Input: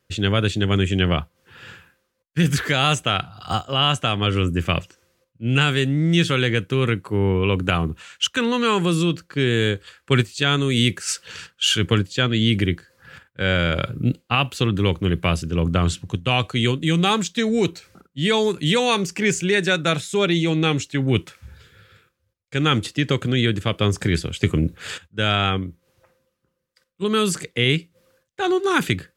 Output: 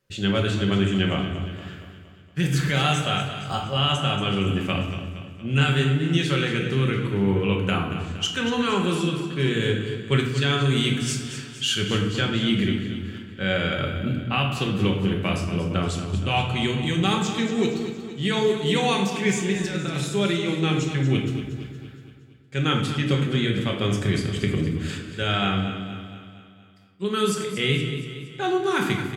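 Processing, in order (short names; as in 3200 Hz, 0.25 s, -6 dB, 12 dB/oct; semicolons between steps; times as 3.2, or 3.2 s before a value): 19.52–20.09 negative-ratio compressor -23 dBFS, ratio -0.5; feedback echo 0.233 s, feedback 53%, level -11 dB; reverb RT60 0.95 s, pre-delay 5 ms, DRR 1 dB; gain -6.5 dB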